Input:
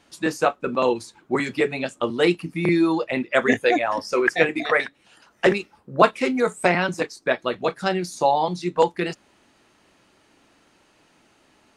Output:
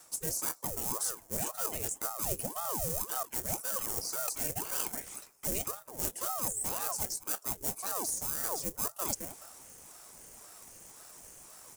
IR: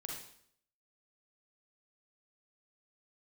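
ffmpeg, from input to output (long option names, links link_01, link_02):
-filter_complex "[0:a]asplit=2[link_01][link_02];[link_02]adelay=213,lowpass=frequency=1600:poles=1,volume=-20.5dB,asplit=2[link_03][link_04];[link_04]adelay=213,lowpass=frequency=1600:poles=1,volume=0.21[link_05];[link_01][link_03][link_05]amix=inputs=3:normalize=0,asoftclip=type=tanh:threshold=-16dB,asplit=2[link_06][link_07];[link_07]acrusher=samples=35:mix=1:aa=0.000001,volume=-3.5dB[link_08];[link_06][link_08]amix=inputs=2:normalize=0,acrossover=split=380|3000[link_09][link_10][link_11];[link_10]acompressor=threshold=-38dB:ratio=2[link_12];[link_09][link_12][link_11]amix=inputs=3:normalize=0,aexciter=amount=7.7:drive=8.6:freq=5900,areverse,acompressor=threshold=-28dB:ratio=6,areverse,aeval=exprs='val(0)*sin(2*PI*590*n/s+590*0.75/1.9*sin(2*PI*1.9*n/s))':channel_layout=same"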